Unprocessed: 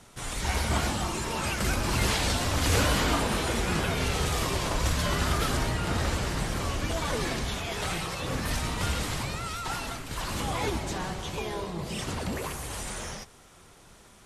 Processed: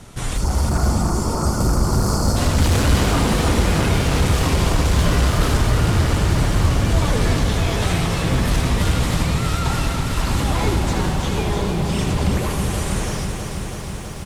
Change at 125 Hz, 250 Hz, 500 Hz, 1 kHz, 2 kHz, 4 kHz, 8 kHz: +13.5 dB, +11.5 dB, +8.5 dB, +7.0 dB, +5.0 dB, +5.5 dB, +6.0 dB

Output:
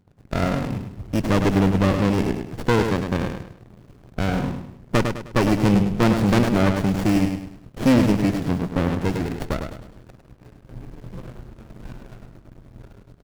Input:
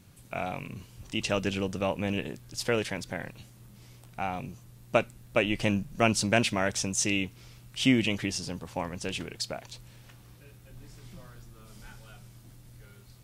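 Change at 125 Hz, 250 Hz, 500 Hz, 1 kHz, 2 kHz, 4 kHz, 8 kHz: +13.0 dB, +11.5 dB, +7.0 dB, +7.5 dB, +2.5 dB, -0.5 dB, -5.0 dB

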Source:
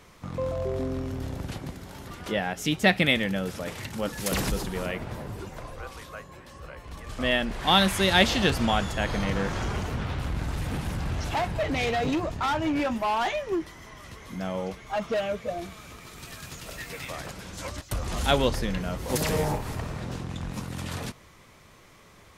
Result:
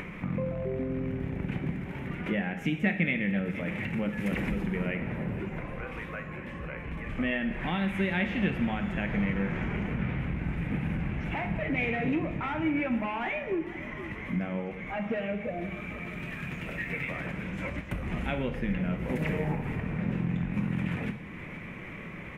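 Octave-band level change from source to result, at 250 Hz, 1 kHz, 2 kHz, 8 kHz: +0.5 dB, -8.5 dB, -2.5 dB, under -20 dB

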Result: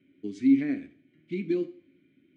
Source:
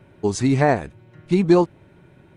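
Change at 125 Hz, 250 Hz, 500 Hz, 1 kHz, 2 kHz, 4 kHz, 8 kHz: -20.5 dB, -5.0 dB, -15.0 dB, under -30 dB, -14.0 dB, under -15 dB, no reading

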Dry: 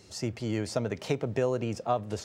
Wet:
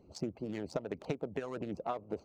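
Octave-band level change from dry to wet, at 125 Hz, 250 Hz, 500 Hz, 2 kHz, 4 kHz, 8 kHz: -12.0 dB, -6.5 dB, -8.5 dB, -8.5 dB, -12.0 dB, -14.0 dB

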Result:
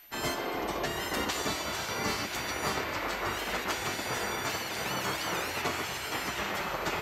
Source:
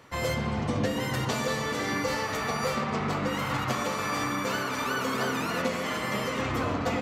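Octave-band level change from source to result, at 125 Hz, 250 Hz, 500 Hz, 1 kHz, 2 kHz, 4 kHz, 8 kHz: -10.0 dB, -8.0 dB, -5.0 dB, -3.5 dB, -1.5 dB, +1.0 dB, +1.5 dB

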